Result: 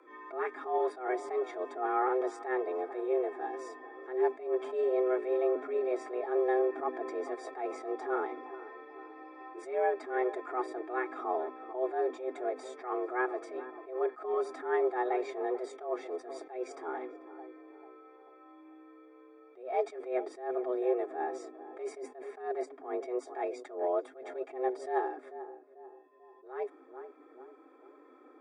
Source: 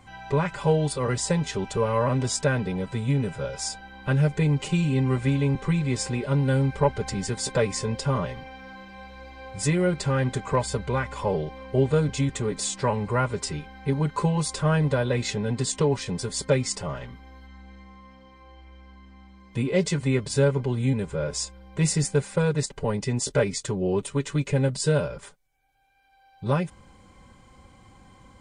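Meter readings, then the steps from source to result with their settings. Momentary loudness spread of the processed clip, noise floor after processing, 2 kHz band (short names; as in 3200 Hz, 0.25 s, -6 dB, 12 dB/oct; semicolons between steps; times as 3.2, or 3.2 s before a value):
17 LU, -57 dBFS, -9.0 dB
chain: polynomial smoothing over 41 samples; frequency shift +250 Hz; on a send: darkening echo 0.442 s, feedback 47%, low-pass 1200 Hz, level -14.5 dB; on the sum: attack slew limiter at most 130 dB/s; gain -6 dB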